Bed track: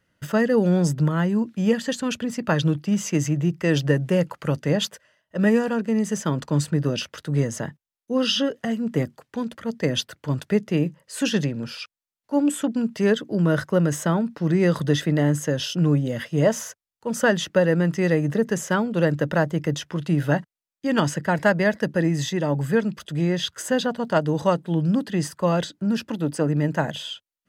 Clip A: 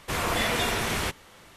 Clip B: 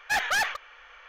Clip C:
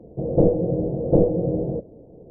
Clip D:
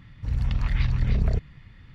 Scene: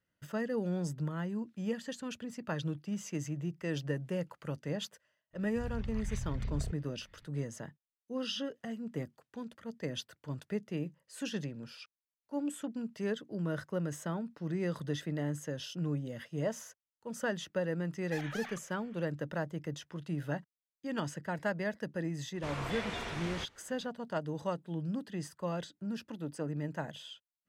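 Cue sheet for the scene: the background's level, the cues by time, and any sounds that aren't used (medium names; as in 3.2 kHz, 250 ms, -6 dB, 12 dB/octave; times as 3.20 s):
bed track -15 dB
5.33 s: add D -14.5 dB
18.02 s: add B -15 dB + compression, threshold -26 dBFS
22.34 s: add A -12 dB + distance through air 84 m
not used: C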